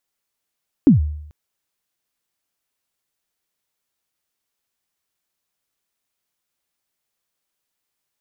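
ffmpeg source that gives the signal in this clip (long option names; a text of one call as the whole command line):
ffmpeg -f lavfi -i "aevalsrc='0.596*pow(10,-3*t/0.74)*sin(2*PI*(320*0.13/log(75/320)*(exp(log(75/320)*min(t,0.13)/0.13)-1)+75*max(t-0.13,0)))':duration=0.44:sample_rate=44100" out.wav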